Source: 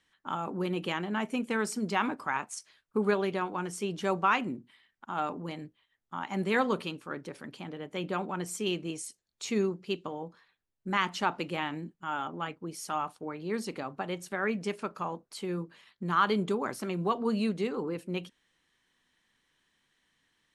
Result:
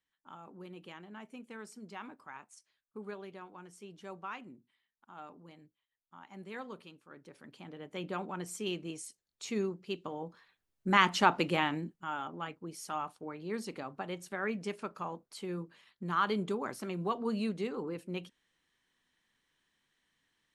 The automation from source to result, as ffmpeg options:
ffmpeg -i in.wav -af "volume=4dB,afade=type=in:start_time=7.09:duration=0.85:silence=0.266073,afade=type=in:start_time=9.93:duration=1.08:silence=0.354813,afade=type=out:start_time=11.51:duration=0.65:silence=0.375837" out.wav

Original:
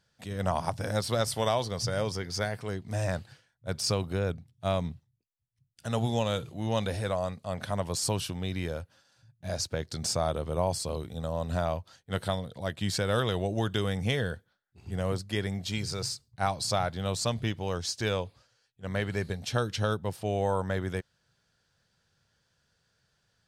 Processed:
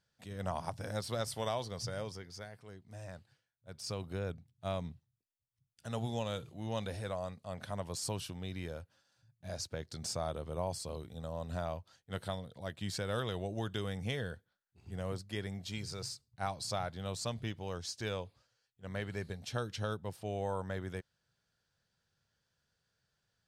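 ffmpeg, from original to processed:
ffmpeg -i in.wav -af "afade=type=out:start_time=1.82:duration=0.63:silence=0.375837,afade=type=in:start_time=3.7:duration=0.43:silence=0.375837" out.wav

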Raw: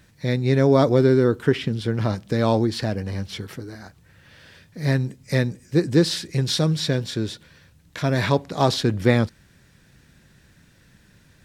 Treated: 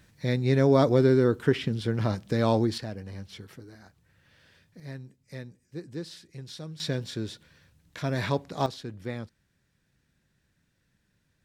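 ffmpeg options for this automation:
ffmpeg -i in.wav -af "asetnsamples=nb_out_samples=441:pad=0,asendcmd='2.78 volume volume -11.5dB;4.8 volume volume -19.5dB;6.8 volume volume -7.5dB;8.66 volume volume -17.5dB',volume=-4dB" out.wav

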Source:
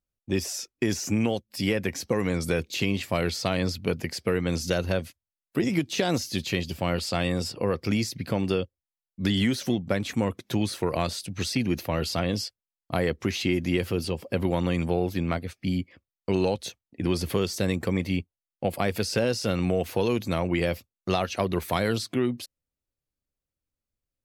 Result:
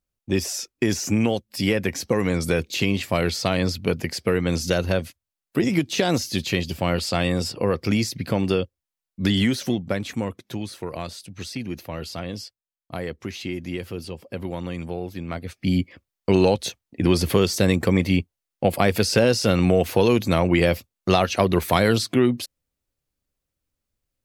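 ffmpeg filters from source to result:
ffmpeg -i in.wav -af "volume=16dB,afade=type=out:start_time=9.33:duration=1.28:silence=0.354813,afade=type=in:start_time=15.28:duration=0.52:silence=0.251189" out.wav

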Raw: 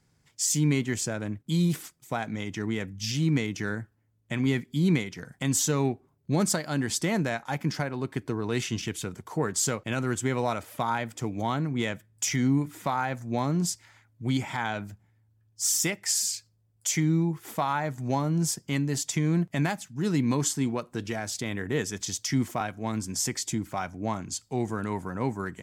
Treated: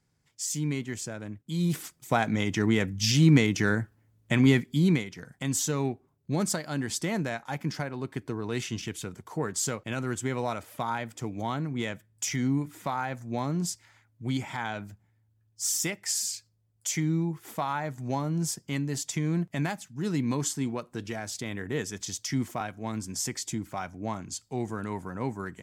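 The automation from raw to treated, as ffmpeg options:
ffmpeg -i in.wav -af "volume=6dB,afade=type=in:start_time=1.54:duration=0.62:silence=0.251189,afade=type=out:start_time=4.39:duration=0.66:silence=0.354813" out.wav

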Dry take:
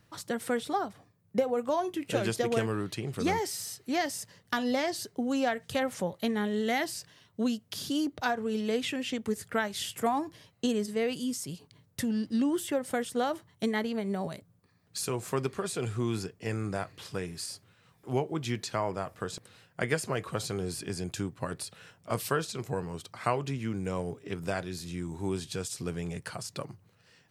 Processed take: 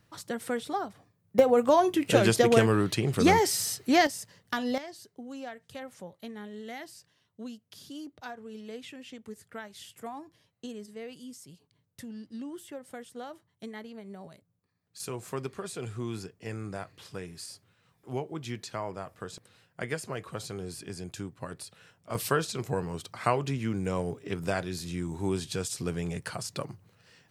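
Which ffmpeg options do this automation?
ffmpeg -i in.wav -af "asetnsamples=nb_out_samples=441:pad=0,asendcmd='1.39 volume volume 7.5dB;4.07 volume volume -1dB;4.78 volume volume -12dB;15 volume volume -4.5dB;22.15 volume volume 2.5dB',volume=-1.5dB" out.wav

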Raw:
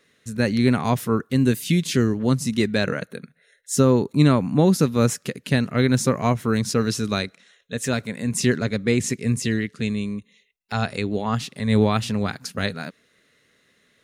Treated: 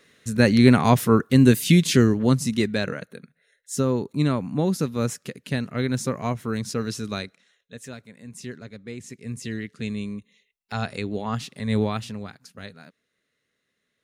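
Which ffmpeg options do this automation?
ffmpeg -i in.wav -af "volume=16.5dB,afade=type=out:start_time=1.76:duration=1.23:silence=0.316228,afade=type=out:start_time=7.18:duration=0.79:silence=0.298538,afade=type=in:start_time=9.06:duration=0.95:silence=0.237137,afade=type=out:start_time=11.71:duration=0.63:silence=0.298538" out.wav

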